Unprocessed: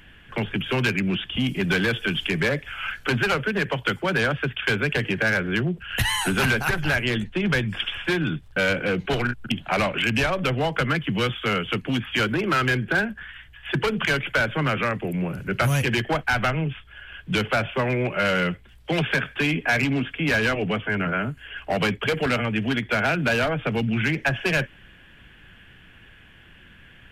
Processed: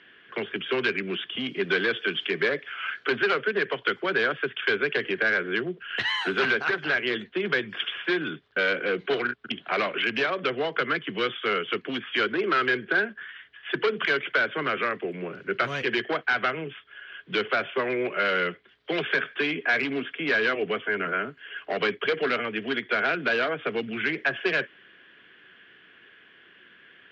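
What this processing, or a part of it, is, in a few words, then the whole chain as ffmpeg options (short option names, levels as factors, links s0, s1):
phone earpiece: -af "highpass=390,equalizer=f=400:t=q:w=4:g=6,equalizer=f=580:t=q:w=4:g=-4,equalizer=f=850:t=q:w=4:g=-9,equalizer=f=2600:t=q:w=4:g=-5,lowpass=f=4100:w=0.5412,lowpass=f=4100:w=1.3066"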